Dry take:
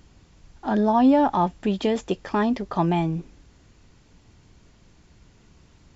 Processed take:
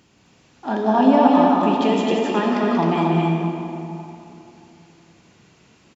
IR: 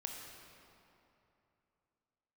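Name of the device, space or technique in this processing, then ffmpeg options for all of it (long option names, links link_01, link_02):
stadium PA: -filter_complex "[0:a]highpass=160,equalizer=frequency=2600:width_type=o:width=0.44:gain=4,aecho=1:1:183.7|262.4:0.562|0.708[link_01];[1:a]atrim=start_sample=2205[link_02];[link_01][link_02]afir=irnorm=-1:irlink=0,volume=4dB"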